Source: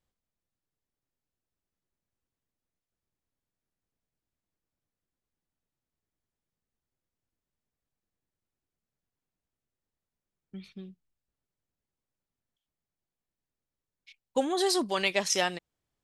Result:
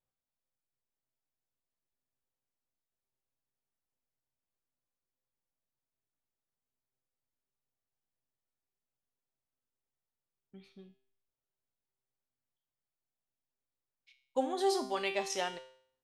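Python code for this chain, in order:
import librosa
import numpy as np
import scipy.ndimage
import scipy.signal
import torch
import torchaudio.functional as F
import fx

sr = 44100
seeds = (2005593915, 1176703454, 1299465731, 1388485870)

y = fx.peak_eq(x, sr, hz=750.0, db=6.5, octaves=1.8)
y = fx.comb_fb(y, sr, f0_hz=130.0, decay_s=0.57, harmonics='all', damping=0.0, mix_pct=80)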